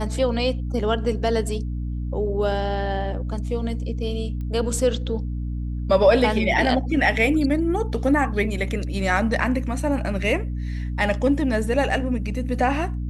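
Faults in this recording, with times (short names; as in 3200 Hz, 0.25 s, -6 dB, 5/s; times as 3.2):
hum 60 Hz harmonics 5 -27 dBFS
4.41 pop -24 dBFS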